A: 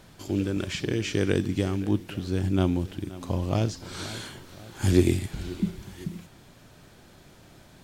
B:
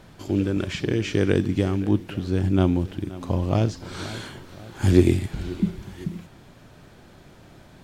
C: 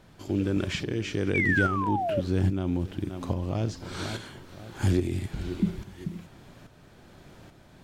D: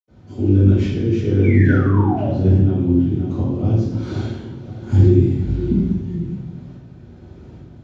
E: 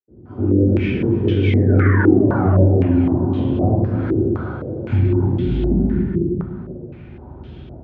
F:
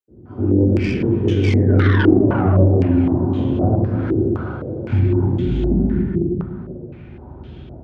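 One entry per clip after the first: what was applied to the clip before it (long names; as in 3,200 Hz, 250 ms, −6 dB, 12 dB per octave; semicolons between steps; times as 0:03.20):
high-shelf EQ 3,700 Hz −8 dB; level +4 dB
brickwall limiter −13.5 dBFS, peak gain reduction 11 dB; sound drawn into the spectrogram fall, 0:01.34–0:02.21, 540–2,400 Hz −25 dBFS; shaped tremolo saw up 1.2 Hz, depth 55%
convolution reverb RT60 1.1 s, pre-delay 76 ms; level −15 dB
downward compressor, threshold −14 dBFS, peak gain reduction 7.5 dB; on a send: echo with a time of its own for lows and highs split 330 Hz, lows 94 ms, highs 307 ms, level −3 dB; on the sum: low-pass on a step sequencer 3.9 Hz 380–3,200 Hz
stylus tracing distortion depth 0.089 ms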